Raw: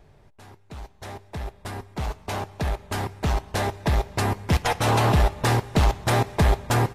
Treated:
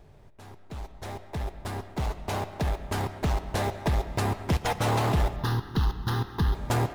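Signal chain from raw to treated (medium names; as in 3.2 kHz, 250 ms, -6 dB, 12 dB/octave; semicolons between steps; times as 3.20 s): compression 2:1, threshold -26 dBFS, peak gain reduction 6 dB; in parallel at -9.5 dB: sample-rate reducer 2.9 kHz; 5.36–6.55 s: on the sum: static phaser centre 2.3 kHz, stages 6; reverberation RT60 0.65 s, pre-delay 100 ms, DRR 12.5 dB; trim -2 dB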